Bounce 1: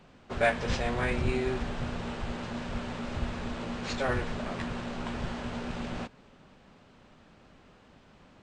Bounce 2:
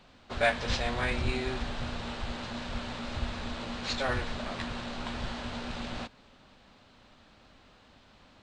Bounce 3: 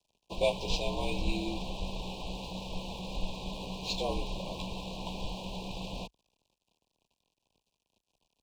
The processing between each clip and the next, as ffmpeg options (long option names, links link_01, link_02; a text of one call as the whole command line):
ffmpeg -i in.wav -af "equalizer=frequency=160:width_type=o:width=0.67:gain=-7,equalizer=frequency=400:width_type=o:width=0.67:gain=-5,equalizer=frequency=4000:width_type=o:width=0.67:gain=7" out.wav
ffmpeg -i in.wav -af "aeval=exprs='sgn(val(0))*max(abs(val(0))-0.00251,0)':channel_layout=same,afreqshift=-51,asuperstop=centerf=1600:order=20:qfactor=1.2" out.wav